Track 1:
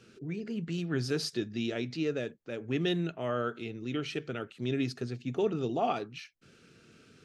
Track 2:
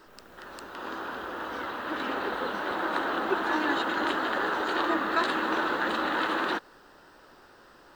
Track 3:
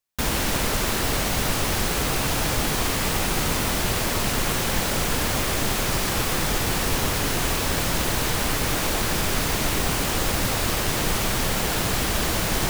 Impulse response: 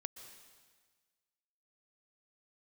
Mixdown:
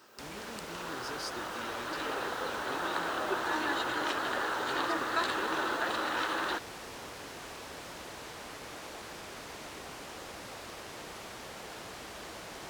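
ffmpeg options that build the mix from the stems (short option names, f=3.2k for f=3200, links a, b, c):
-filter_complex "[0:a]acompressor=threshold=-33dB:ratio=6,volume=-5.5dB[a];[1:a]volume=-4.5dB[b];[2:a]aemphasis=mode=reproduction:type=75fm,volume=-17dB[c];[a][b][c]amix=inputs=3:normalize=0,highpass=50,bass=f=250:g=-12,treble=f=4k:g=6"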